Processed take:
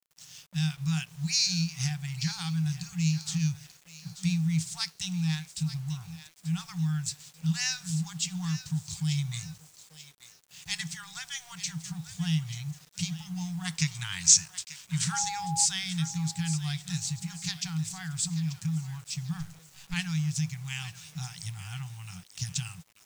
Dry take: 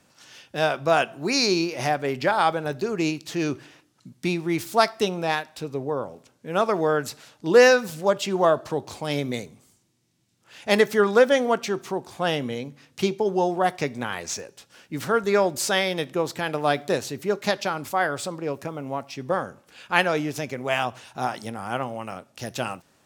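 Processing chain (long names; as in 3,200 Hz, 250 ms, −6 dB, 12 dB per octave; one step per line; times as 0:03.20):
0:19.40–0:19.94: gain on one half-wave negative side −12 dB
parametric band 160 Hz +15 dB 0.25 octaves
in parallel at +3 dB: downward compressor 12 to 1, threshold −29 dBFS, peak gain reduction 19.5 dB
on the sum: drawn EQ curve 100 Hz 0 dB, 290 Hz −12 dB, 440 Hz −11 dB, 710 Hz −28 dB, 1,200 Hz −24 dB, 1,900 Hz −14 dB, 8,000 Hz +4 dB, 14,000 Hz −25 dB
dead-zone distortion −52 dBFS
0:13.65–0:15.28: gain on a spectral selection 880–10,000 Hz +8 dB
0:15.12–0:15.64: steady tone 820 Hz −31 dBFS
on a send: feedback echo with a high-pass in the loop 887 ms, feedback 39%, high-pass 1,000 Hz, level −12.5 dB
on the sum: brick-wall band-stop 190–710 Hz
bit reduction 9 bits
level −1.5 dB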